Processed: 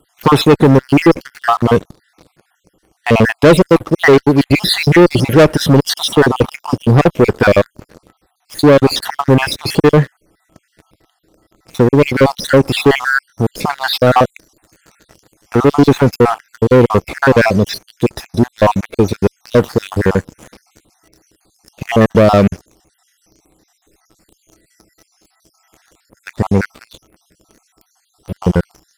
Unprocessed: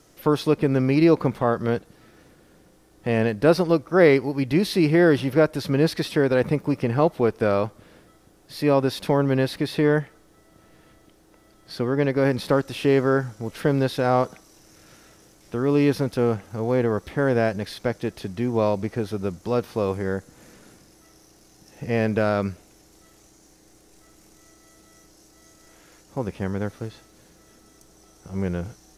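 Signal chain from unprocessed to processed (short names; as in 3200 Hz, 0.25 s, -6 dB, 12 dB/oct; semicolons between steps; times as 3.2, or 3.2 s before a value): random spectral dropouts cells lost 59%; in parallel at -4 dB: one-sided clip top -21.5 dBFS, bottom -11 dBFS; on the sum: sample leveller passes 3; gain +3.5 dB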